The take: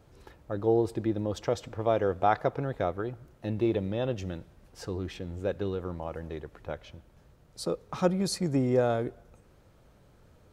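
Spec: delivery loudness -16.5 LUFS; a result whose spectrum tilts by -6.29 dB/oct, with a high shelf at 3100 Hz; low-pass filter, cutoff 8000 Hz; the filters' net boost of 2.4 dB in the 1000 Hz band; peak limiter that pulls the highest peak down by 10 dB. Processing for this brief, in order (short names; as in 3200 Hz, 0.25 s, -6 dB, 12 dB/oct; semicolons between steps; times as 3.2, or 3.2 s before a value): LPF 8000 Hz; bell 1000 Hz +4.5 dB; high shelf 3100 Hz -7.5 dB; gain +16.5 dB; limiter -2.5 dBFS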